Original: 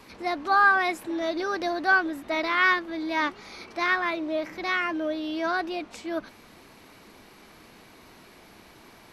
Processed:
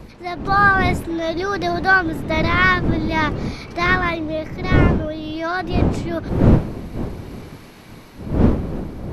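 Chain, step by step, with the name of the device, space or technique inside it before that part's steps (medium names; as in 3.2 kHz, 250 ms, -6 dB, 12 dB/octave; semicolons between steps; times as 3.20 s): smartphone video outdoors (wind noise 250 Hz -25 dBFS; level rider gain up to 7 dB; AAC 128 kbps 48 kHz)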